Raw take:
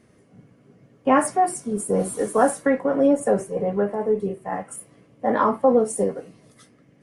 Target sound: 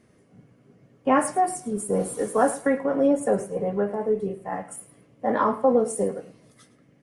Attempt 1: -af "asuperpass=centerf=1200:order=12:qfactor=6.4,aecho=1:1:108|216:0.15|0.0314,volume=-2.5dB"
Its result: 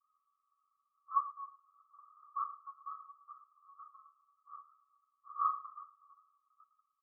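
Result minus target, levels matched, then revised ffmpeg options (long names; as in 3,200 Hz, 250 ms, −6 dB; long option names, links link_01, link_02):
1,000 Hz band +2.5 dB
-af "aecho=1:1:108|216:0.15|0.0314,volume=-2.5dB"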